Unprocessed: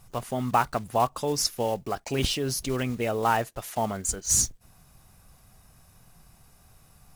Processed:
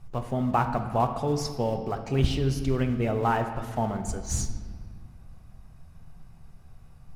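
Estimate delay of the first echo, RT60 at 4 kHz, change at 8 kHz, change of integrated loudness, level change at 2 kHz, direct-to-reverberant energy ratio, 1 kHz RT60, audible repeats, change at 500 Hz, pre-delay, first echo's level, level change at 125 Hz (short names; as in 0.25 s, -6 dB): none, 1.3 s, -11.5 dB, -1.0 dB, -3.0 dB, 6.0 dB, 1.6 s, none, 0.0 dB, 5 ms, none, +6.0 dB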